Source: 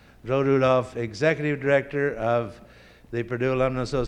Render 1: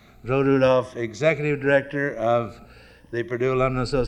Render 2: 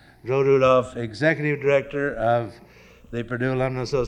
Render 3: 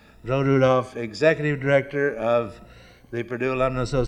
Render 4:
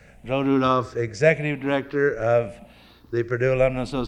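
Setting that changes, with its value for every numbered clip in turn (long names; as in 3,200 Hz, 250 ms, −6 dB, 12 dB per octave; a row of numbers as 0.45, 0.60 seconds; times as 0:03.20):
rippled gain that drifts along the octave scale, ripples per octave: 1.2, 0.8, 2, 0.53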